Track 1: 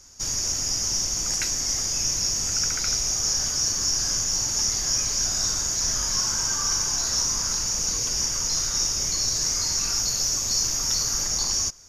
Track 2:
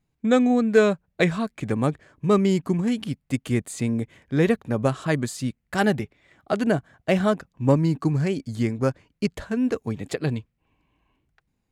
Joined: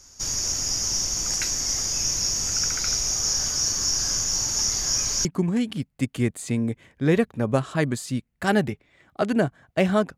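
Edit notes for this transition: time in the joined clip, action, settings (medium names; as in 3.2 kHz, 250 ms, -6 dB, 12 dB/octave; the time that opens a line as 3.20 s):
track 1
5.25 s: go over to track 2 from 2.56 s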